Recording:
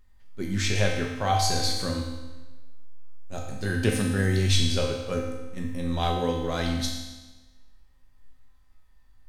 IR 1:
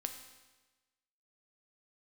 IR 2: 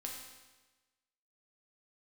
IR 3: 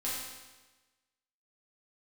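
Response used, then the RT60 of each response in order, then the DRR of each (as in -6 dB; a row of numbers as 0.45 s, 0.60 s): 2; 1.2 s, 1.2 s, 1.2 s; 5.5 dB, -1.0 dB, -8.0 dB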